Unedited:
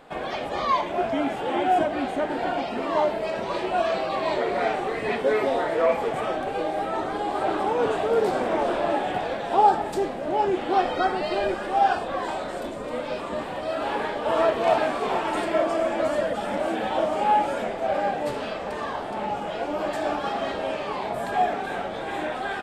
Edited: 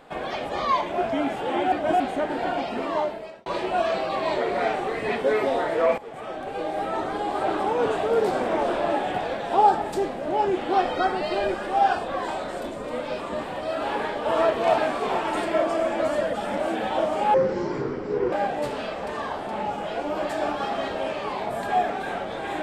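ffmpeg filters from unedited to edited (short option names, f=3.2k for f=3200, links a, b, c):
-filter_complex "[0:a]asplit=7[a][b][c][d][e][f][g];[a]atrim=end=1.722[h];[b]atrim=start=1.718:end=2.002,asetpts=PTS-STARTPTS,areverse[i];[c]atrim=start=1.998:end=3.46,asetpts=PTS-STARTPTS,afade=t=out:st=0.822:d=0.64[j];[d]atrim=start=3.46:end=5.98,asetpts=PTS-STARTPTS,afade=t=in:d=0.004:c=hsin,afade=t=out:st=2.516:d=0.004:c=hsin:silence=0.141254[k];[e]atrim=start=5.98:end=17.344,asetpts=PTS-STARTPTS,afade=t=in:d=0.88:silence=0.141254[l];[f]atrim=start=17.34:end=17.96,asetpts=PTS-STARTPTS,asetrate=27783,aresample=44100[m];[g]atrim=start=17.956[n];[h][i]acrossfade=d=0.004:c1=hsin:c2=hsin[o];[j][k][l]concat=n=3:v=0:a=1[p];[o][p]acrossfade=d=0.004:c1=hsin:c2=hsin[q];[q][m]acrossfade=d=0.004:c1=hsin:c2=hsin[r];[r][n]acrossfade=d=0.004:c1=hsin:c2=hsin"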